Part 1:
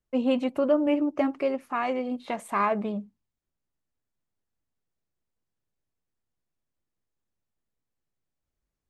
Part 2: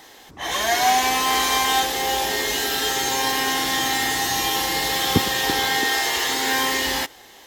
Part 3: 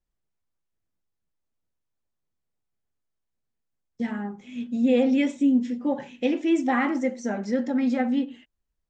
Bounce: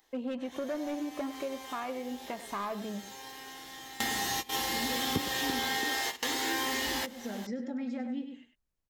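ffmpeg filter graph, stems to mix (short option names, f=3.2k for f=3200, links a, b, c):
-filter_complex "[0:a]volume=19dB,asoftclip=hard,volume=-19dB,volume=-5dB,asplit=2[a][b];[b]volume=-15dB[c];[1:a]volume=1dB[d];[2:a]acrossover=split=460|3000[e][f][g];[f]acompressor=threshold=-32dB:ratio=6[h];[e][h][g]amix=inputs=3:normalize=0,volume=-7dB,asplit=3[i][j][k];[j]volume=-9dB[l];[k]apad=whole_len=329257[m];[d][m]sidechaingate=range=-25dB:threshold=-48dB:ratio=16:detection=peak[n];[c][l]amix=inputs=2:normalize=0,aecho=0:1:100:1[o];[a][n][i][o]amix=inputs=4:normalize=0,acompressor=threshold=-35dB:ratio=2.5"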